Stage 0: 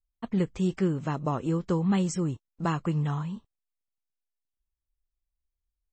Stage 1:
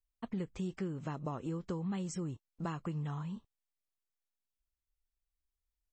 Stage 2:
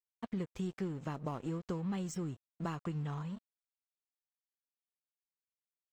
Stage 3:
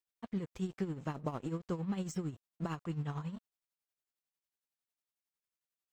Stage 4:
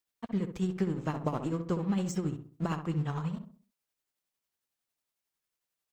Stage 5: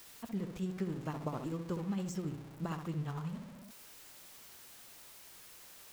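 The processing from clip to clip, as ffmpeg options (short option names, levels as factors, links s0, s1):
-af "acompressor=threshold=0.0251:ratio=3,volume=0.596"
-af "aeval=exprs='sgn(val(0))*max(abs(val(0))-0.002,0)':c=same,volume=1.12"
-af "tremolo=f=11:d=0.66,volume=1.41"
-filter_complex "[0:a]asplit=2[s0][s1];[s1]adelay=65,lowpass=f=1400:p=1,volume=0.447,asplit=2[s2][s3];[s3]adelay=65,lowpass=f=1400:p=1,volume=0.4,asplit=2[s4][s5];[s5]adelay=65,lowpass=f=1400:p=1,volume=0.4,asplit=2[s6][s7];[s7]adelay=65,lowpass=f=1400:p=1,volume=0.4,asplit=2[s8][s9];[s9]adelay=65,lowpass=f=1400:p=1,volume=0.4[s10];[s0][s2][s4][s6][s8][s10]amix=inputs=6:normalize=0,volume=1.88"
-af "aeval=exprs='val(0)+0.5*0.0112*sgn(val(0))':c=same,volume=0.422"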